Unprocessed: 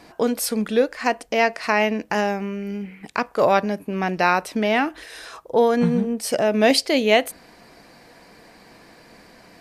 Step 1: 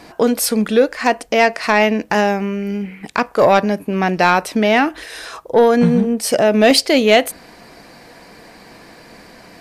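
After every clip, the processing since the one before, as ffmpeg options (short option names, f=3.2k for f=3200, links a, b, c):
-af "acontrast=76"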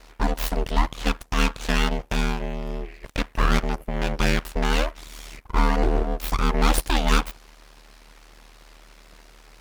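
-af "aeval=exprs='abs(val(0))':c=same,aeval=exprs='val(0)*sin(2*PI*38*n/s)':c=same,volume=-4dB"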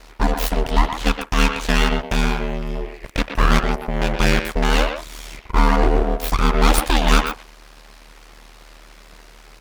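-filter_complex "[0:a]asplit=2[a][b];[b]adelay=120,highpass=300,lowpass=3.4k,asoftclip=type=hard:threshold=-14.5dB,volume=-6dB[c];[a][c]amix=inputs=2:normalize=0,volume=4.5dB"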